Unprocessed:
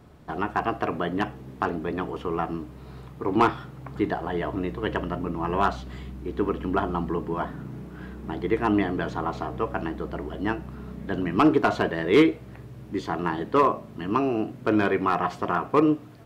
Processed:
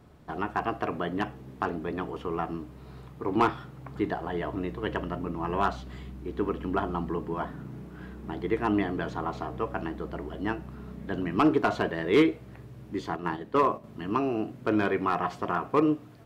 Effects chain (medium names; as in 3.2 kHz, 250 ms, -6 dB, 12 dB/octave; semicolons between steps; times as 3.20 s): 13.16–13.84 s: gate -27 dBFS, range -6 dB; trim -3.5 dB